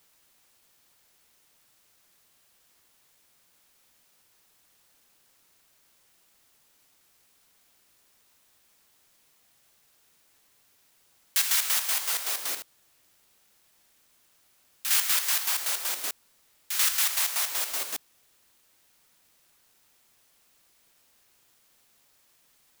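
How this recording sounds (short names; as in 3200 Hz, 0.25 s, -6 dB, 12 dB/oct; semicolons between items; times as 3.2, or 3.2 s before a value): chopped level 5.3 Hz, depth 60%, duty 50%; a quantiser's noise floor 12-bit, dither triangular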